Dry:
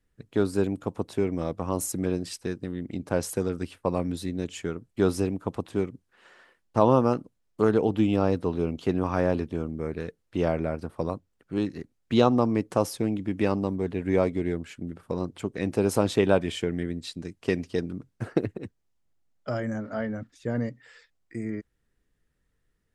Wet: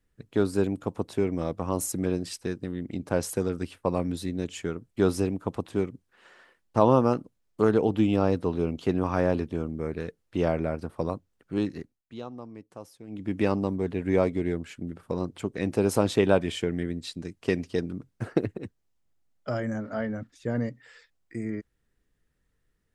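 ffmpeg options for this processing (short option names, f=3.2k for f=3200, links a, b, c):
-filter_complex "[0:a]asplit=3[a][b][c];[a]atrim=end=12.03,asetpts=PTS-STARTPTS,afade=t=out:st=11.78:d=0.25:silence=0.112202[d];[b]atrim=start=12.03:end=13.07,asetpts=PTS-STARTPTS,volume=-19dB[e];[c]atrim=start=13.07,asetpts=PTS-STARTPTS,afade=t=in:d=0.25:silence=0.112202[f];[d][e][f]concat=n=3:v=0:a=1"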